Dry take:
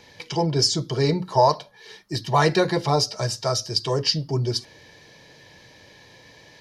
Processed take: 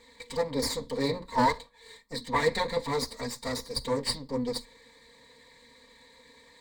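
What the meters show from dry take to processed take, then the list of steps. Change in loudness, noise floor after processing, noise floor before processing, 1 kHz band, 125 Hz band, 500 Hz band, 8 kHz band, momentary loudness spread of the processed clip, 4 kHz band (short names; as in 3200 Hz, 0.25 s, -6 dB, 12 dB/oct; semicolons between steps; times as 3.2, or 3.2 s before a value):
-8.0 dB, -58 dBFS, -51 dBFS, -7.0 dB, -15.0 dB, -7.0 dB, -8.5 dB, 11 LU, -10.0 dB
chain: minimum comb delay 4.3 ms; ripple EQ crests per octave 1, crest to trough 14 dB; gain -8 dB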